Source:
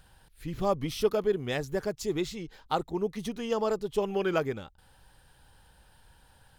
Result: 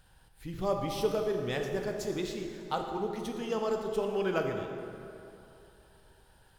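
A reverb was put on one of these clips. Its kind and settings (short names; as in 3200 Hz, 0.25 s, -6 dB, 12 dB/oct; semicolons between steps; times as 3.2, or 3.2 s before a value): plate-style reverb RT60 2.9 s, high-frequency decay 0.6×, DRR 2.5 dB; gain -4 dB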